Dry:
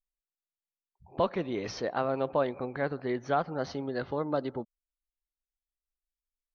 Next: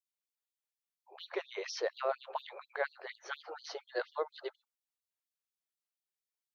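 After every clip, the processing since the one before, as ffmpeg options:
ffmpeg -i in.wav -af "afftfilt=real='re*gte(b*sr/1024,340*pow(3300/340,0.5+0.5*sin(2*PI*4.2*pts/sr)))':imag='im*gte(b*sr/1024,340*pow(3300/340,0.5+0.5*sin(2*PI*4.2*pts/sr)))':win_size=1024:overlap=0.75" out.wav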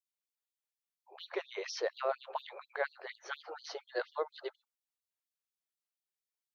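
ffmpeg -i in.wav -af anull out.wav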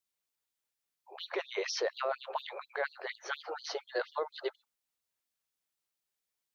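ffmpeg -i in.wav -af "alimiter=level_in=4.5dB:limit=-24dB:level=0:latency=1:release=20,volume=-4.5dB,volume=5.5dB" out.wav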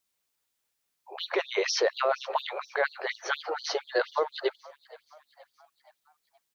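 ffmpeg -i in.wav -filter_complex "[0:a]asplit=5[link_01][link_02][link_03][link_04][link_05];[link_02]adelay=473,afreqshift=72,volume=-22.5dB[link_06];[link_03]adelay=946,afreqshift=144,volume=-27.9dB[link_07];[link_04]adelay=1419,afreqshift=216,volume=-33.2dB[link_08];[link_05]adelay=1892,afreqshift=288,volume=-38.6dB[link_09];[link_01][link_06][link_07][link_08][link_09]amix=inputs=5:normalize=0,volume=7.5dB" out.wav

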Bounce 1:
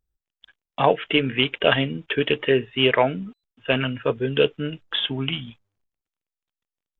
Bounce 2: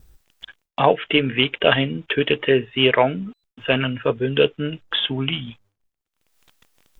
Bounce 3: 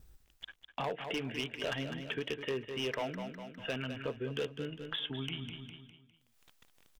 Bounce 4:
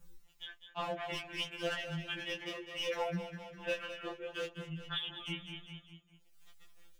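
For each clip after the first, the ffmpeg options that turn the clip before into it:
ffmpeg -i in.wav -filter_complex "[0:a]asplit=2[link_01][link_02];[link_02]acompressor=mode=upward:threshold=-20dB:ratio=2.5,volume=-2dB[link_03];[link_01][link_03]amix=inputs=2:normalize=0,agate=range=-33dB:threshold=-49dB:ratio=3:detection=peak,volume=-3dB" out.wav
ffmpeg -i in.wav -filter_complex "[0:a]asoftclip=type=hard:threshold=-12dB,asplit=2[link_01][link_02];[link_02]aecho=0:1:203|406|609|812:0.282|0.101|0.0365|0.0131[link_03];[link_01][link_03]amix=inputs=2:normalize=0,acompressor=threshold=-35dB:ratio=2,volume=-7dB" out.wav
ffmpeg -i in.wav -af "aeval=exprs='val(0)+0.000562*sin(2*PI*6800*n/s)':channel_layout=same,flanger=delay=17.5:depth=3.6:speed=0.65,afftfilt=real='re*2.83*eq(mod(b,8),0)':imag='im*2.83*eq(mod(b,8),0)':win_size=2048:overlap=0.75,volume=6dB" out.wav

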